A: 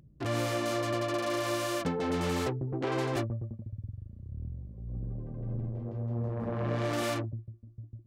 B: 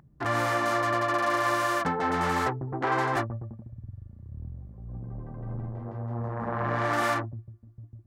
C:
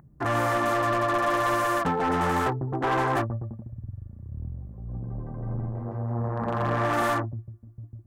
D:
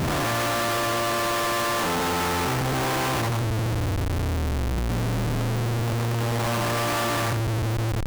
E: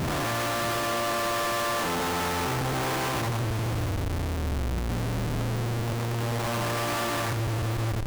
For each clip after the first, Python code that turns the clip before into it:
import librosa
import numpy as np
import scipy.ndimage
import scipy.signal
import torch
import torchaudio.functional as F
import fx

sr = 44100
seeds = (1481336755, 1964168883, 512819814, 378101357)

y1 = fx.band_shelf(x, sr, hz=1200.0, db=11.0, octaves=1.7)
y1 = fx.hum_notches(y1, sr, base_hz=50, count=2)
y2 = fx.peak_eq(y1, sr, hz=3700.0, db=-10.5, octaves=1.5)
y2 = np.clip(y2, -10.0 ** (-23.5 / 20.0), 10.0 ** (-23.5 / 20.0))
y2 = y2 * librosa.db_to_amplitude(4.0)
y3 = fx.spec_blur(y2, sr, span_ms=327.0)
y3 = fx.schmitt(y3, sr, flips_db=-45.0)
y3 = y3 * librosa.db_to_amplitude(4.5)
y4 = y3 + 10.0 ** (-12.0 / 20.0) * np.pad(y3, (int(618 * sr / 1000.0), 0))[:len(y3)]
y4 = y4 * librosa.db_to_amplitude(-3.5)